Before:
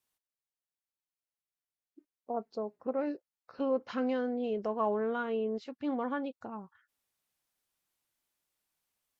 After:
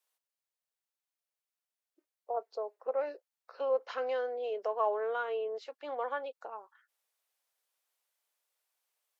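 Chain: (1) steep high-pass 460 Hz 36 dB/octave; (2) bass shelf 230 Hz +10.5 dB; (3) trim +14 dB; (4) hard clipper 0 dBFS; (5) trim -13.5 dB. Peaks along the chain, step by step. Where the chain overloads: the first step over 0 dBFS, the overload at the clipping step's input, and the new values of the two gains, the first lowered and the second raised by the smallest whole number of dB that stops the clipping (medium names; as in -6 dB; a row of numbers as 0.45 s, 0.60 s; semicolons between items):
-20.5 dBFS, -19.5 dBFS, -5.5 dBFS, -5.5 dBFS, -19.0 dBFS; nothing clips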